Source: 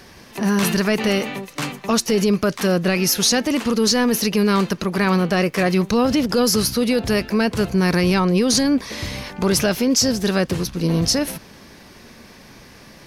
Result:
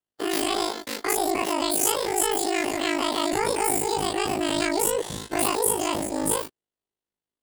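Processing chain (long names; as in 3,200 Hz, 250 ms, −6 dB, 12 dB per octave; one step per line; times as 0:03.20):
every bin's largest magnitude spread in time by 120 ms
noise gate −25 dBFS, range −45 dB
change of speed 1.76×
ring modulation 26 Hz
level −7.5 dB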